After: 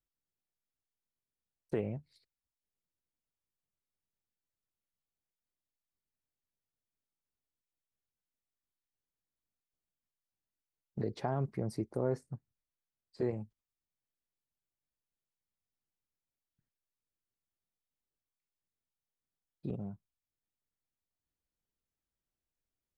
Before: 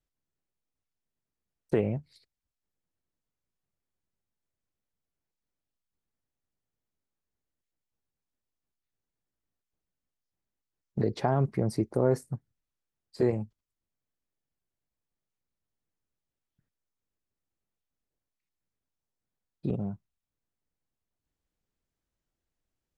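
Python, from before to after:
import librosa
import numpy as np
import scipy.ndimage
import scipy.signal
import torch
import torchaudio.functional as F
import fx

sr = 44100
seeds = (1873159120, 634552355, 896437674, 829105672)

y = fx.air_absorb(x, sr, metres=58.0, at=(12.02, 13.37))
y = F.gain(torch.from_numpy(y), -8.0).numpy()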